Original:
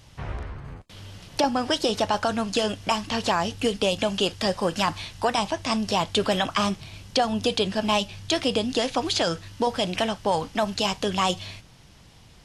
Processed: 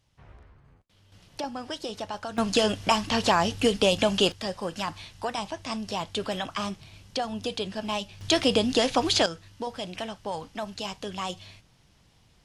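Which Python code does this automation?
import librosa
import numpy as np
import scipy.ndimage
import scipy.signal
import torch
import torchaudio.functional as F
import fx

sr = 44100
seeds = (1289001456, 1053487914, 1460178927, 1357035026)

y = fx.gain(x, sr, db=fx.steps((0.0, -18.5), (1.12, -11.0), (2.38, 1.5), (4.32, -7.5), (8.21, 1.5), (9.26, -9.5)))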